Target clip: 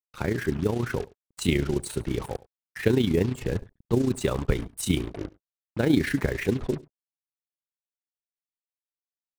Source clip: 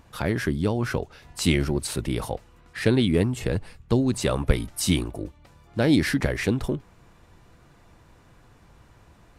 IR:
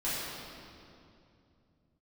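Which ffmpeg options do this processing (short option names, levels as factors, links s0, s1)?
-af "afftdn=nr=34:nf=-39,equalizer=f=400:t=o:w=0.33:g=5,equalizer=f=630:t=o:w=0.33:g=-4,equalizer=f=5000:t=o:w=0.33:g=-11,acrusher=bits=5:mix=0:aa=0.5,aecho=1:1:92:0.0794,tremolo=f=29:d=0.621"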